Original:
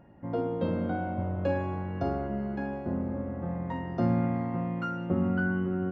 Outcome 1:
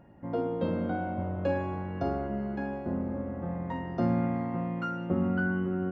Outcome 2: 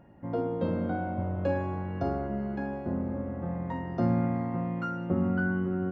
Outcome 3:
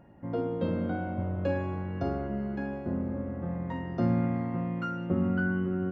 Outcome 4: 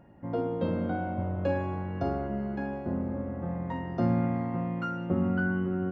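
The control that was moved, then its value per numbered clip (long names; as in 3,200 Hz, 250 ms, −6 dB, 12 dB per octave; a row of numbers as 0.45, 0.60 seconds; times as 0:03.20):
dynamic equaliser, frequency: 110, 3,000, 810, 9,400 Hertz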